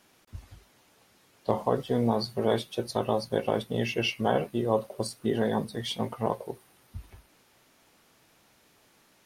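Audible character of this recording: noise floor -63 dBFS; spectral tilt -4.5 dB/octave

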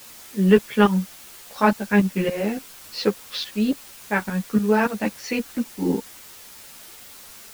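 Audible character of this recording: tremolo saw up 3.5 Hz, depth 85%; a quantiser's noise floor 8-bit, dither triangular; a shimmering, thickened sound

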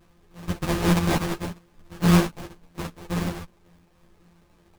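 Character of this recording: a buzz of ramps at a fixed pitch in blocks of 256 samples; phasing stages 6, 3.3 Hz, lowest notch 450–1200 Hz; aliases and images of a low sample rate 1.4 kHz, jitter 20%; a shimmering, thickened sound

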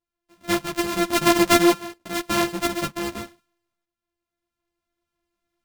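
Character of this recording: a buzz of ramps at a fixed pitch in blocks of 128 samples; tremolo saw up 0.52 Hz, depth 70%; a shimmering, thickened sound

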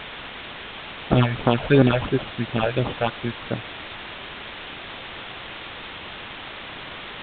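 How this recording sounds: aliases and images of a low sample rate 2 kHz, jitter 0%; phasing stages 6, 2.9 Hz, lowest notch 270–3000 Hz; a quantiser's noise floor 6-bit, dither triangular; A-law

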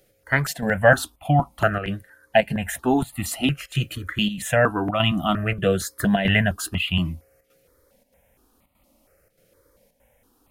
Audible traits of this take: chopped level 1.6 Hz, depth 60%, duty 85%; notches that jump at a steady rate 4.3 Hz 260–1600 Hz

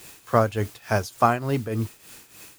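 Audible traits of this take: a quantiser's noise floor 8-bit, dither triangular; tremolo triangle 3.4 Hz, depth 80%

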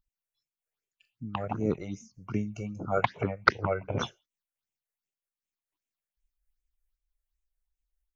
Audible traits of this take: phasing stages 6, 2.6 Hz, lowest notch 240–1300 Hz; random flutter of the level

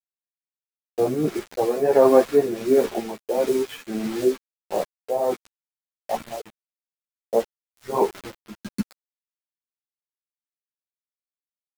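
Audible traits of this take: a quantiser's noise floor 6-bit, dither none; tremolo triangle 1.5 Hz, depth 65%; a shimmering, thickened sound

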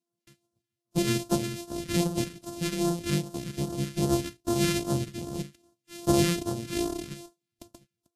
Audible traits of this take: a buzz of ramps at a fixed pitch in blocks of 128 samples; phasing stages 2, 2.5 Hz, lowest notch 770–2100 Hz; Vorbis

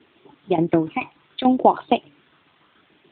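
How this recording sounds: phasing stages 12, 0.69 Hz, lowest notch 530–2100 Hz; tremolo saw down 6.9 Hz, depth 80%; a quantiser's noise floor 10-bit, dither triangular; AMR-NB

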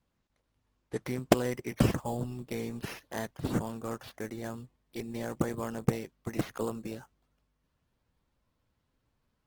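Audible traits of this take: aliases and images of a low sample rate 8 kHz, jitter 0%; Opus

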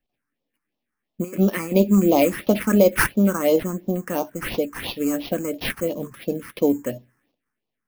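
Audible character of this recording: aliases and images of a low sample rate 7.2 kHz, jitter 0%; phasing stages 4, 2.9 Hz, lowest notch 590–1600 Hz

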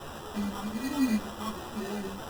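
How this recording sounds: a quantiser's noise floor 6-bit, dither triangular; phasing stages 12, 1.2 Hz, lowest notch 490–1500 Hz; aliases and images of a low sample rate 2.2 kHz, jitter 0%; a shimmering, thickened sound

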